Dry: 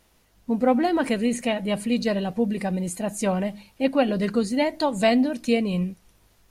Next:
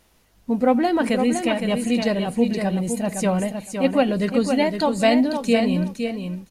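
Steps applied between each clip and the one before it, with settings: feedback delay 512 ms, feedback 16%, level -6.5 dB; trim +2 dB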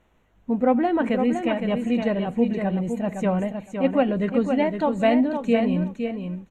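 boxcar filter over 9 samples; trim -1.5 dB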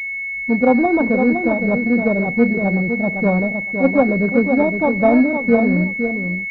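careless resampling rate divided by 4×, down none, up hold; class-D stage that switches slowly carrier 2.2 kHz; trim +6 dB

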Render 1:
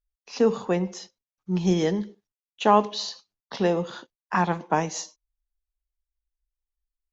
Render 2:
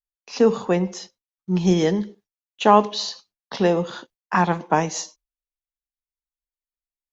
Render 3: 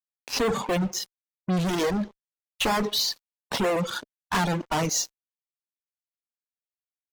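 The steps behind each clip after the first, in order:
gate with hold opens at -50 dBFS; trim +4 dB
fuzz box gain 32 dB, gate -40 dBFS; reverb removal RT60 2 s; trim -8 dB

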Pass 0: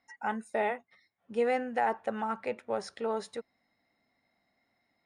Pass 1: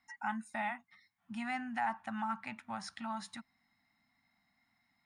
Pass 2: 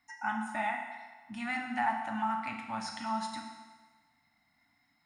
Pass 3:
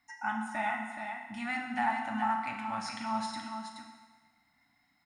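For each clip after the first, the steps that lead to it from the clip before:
Chebyshev band-stop 230–900 Hz, order 2; in parallel at -0.5 dB: compression, threshold -42 dBFS, peak gain reduction 14 dB; on the sum: trim -4.5 dB
FDN reverb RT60 1.4 s, low-frequency decay 0.75×, high-frequency decay 0.9×, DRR 1 dB; trim +2 dB
delay 425 ms -6.5 dB

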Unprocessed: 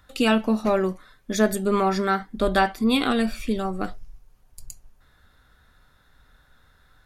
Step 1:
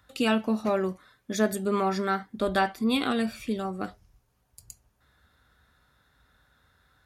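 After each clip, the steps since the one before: high-pass 51 Hz 24 dB/octave; trim -4.5 dB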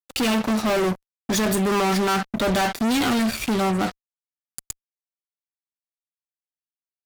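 fuzz box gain 40 dB, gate -45 dBFS; trim -6 dB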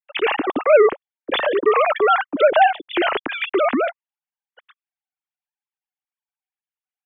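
formants replaced by sine waves; trim +4 dB

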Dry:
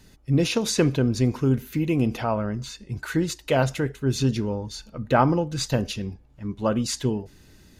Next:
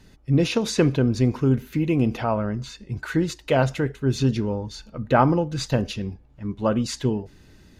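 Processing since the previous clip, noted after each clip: treble shelf 6.3 kHz -10 dB; trim +1.5 dB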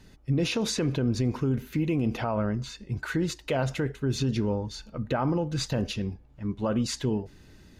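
peak limiter -16.5 dBFS, peak gain reduction 11 dB; trim -1.5 dB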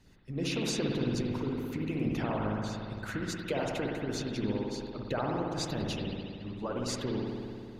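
spring tank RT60 2.4 s, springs 57 ms, chirp 45 ms, DRR -3 dB; harmonic-percussive split harmonic -12 dB; trim -3.5 dB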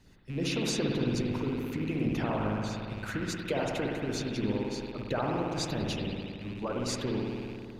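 rattle on loud lows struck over -43 dBFS, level -40 dBFS; trim +1.5 dB

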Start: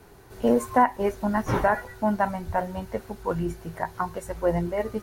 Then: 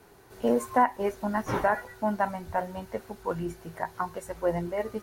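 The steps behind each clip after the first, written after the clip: bass shelf 130 Hz -9 dB; trim -2.5 dB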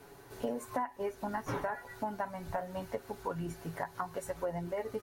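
comb 7.1 ms, depth 45%; compression 6:1, threshold -33 dBFS, peak gain reduction 16.5 dB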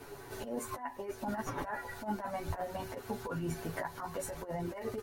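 compressor with a negative ratio -38 dBFS, ratio -0.5; chorus voices 6, 0.58 Hz, delay 11 ms, depth 3.2 ms; trim +5.5 dB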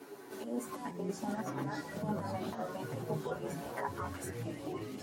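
high-pass sweep 250 Hz -> 2.8 kHz, 2.98–4.63 s; ever faster or slower copies 321 ms, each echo -5 st, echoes 3; trim -4 dB

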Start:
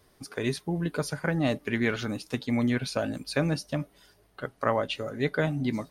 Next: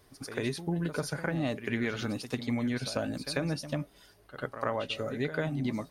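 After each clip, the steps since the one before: compression 3:1, threshold -29 dBFS, peak gain reduction 7.5 dB; on a send: reverse echo 94 ms -11.5 dB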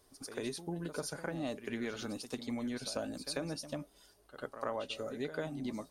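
graphic EQ 125/2000/8000 Hz -10/-6/+5 dB; trim -4.5 dB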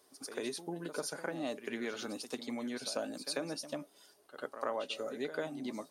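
high-pass 250 Hz 12 dB/octave; trim +1.5 dB

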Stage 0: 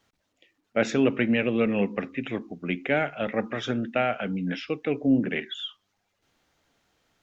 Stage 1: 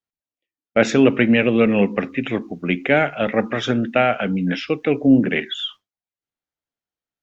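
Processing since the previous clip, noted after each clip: expander -41 dBFS; trim +8 dB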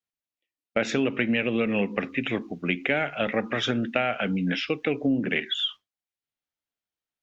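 peaking EQ 2.9 kHz +5 dB 1.7 oct; compression, threshold -16 dBFS, peak gain reduction 8 dB; trim -4.5 dB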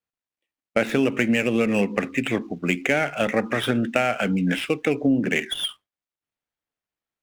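median filter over 9 samples; trim +4 dB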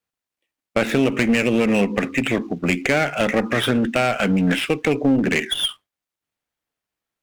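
in parallel at -1.5 dB: peak limiter -15 dBFS, peak gain reduction 10 dB; on the sum: one-sided clip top -16.5 dBFS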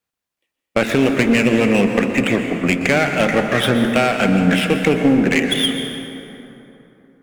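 plate-style reverb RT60 3.2 s, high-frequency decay 0.5×, pre-delay 110 ms, DRR 5 dB; trim +2.5 dB

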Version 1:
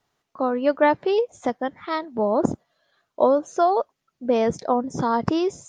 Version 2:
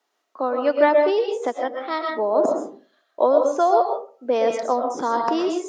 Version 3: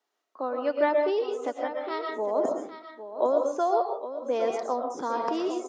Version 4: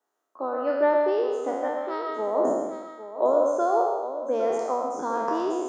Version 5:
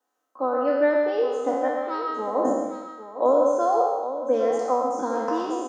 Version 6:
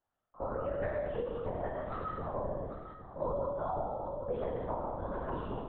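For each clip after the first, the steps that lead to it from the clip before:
high-pass 290 Hz 24 dB/octave; reverberation RT60 0.40 s, pre-delay 85 ms, DRR 2.5 dB
peaking EQ 400 Hz +2 dB 0.34 oct; delay 807 ms -11.5 dB; trim -7.5 dB
spectral sustain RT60 1.17 s; high-order bell 3.3 kHz -9 dB; hum notches 60/120/180/240 Hz
comb 3.9 ms, depth 84%
compression 2.5:1, threshold -25 dBFS, peak gain reduction 7 dB; LPC vocoder at 8 kHz whisper; trim -9 dB

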